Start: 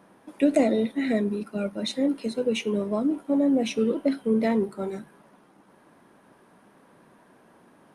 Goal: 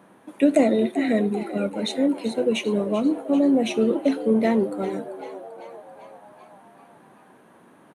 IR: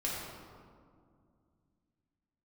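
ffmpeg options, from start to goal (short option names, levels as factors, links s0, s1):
-filter_complex "[0:a]highpass=87,equalizer=f=5100:t=o:w=0.28:g=-9,asplit=8[s0][s1][s2][s3][s4][s5][s6][s7];[s1]adelay=390,afreqshift=79,volume=0.2[s8];[s2]adelay=780,afreqshift=158,volume=0.122[s9];[s3]adelay=1170,afreqshift=237,volume=0.0741[s10];[s4]adelay=1560,afreqshift=316,volume=0.0452[s11];[s5]adelay=1950,afreqshift=395,volume=0.0275[s12];[s6]adelay=2340,afreqshift=474,volume=0.0168[s13];[s7]adelay=2730,afreqshift=553,volume=0.0102[s14];[s0][s8][s9][s10][s11][s12][s13][s14]amix=inputs=8:normalize=0,volume=1.41"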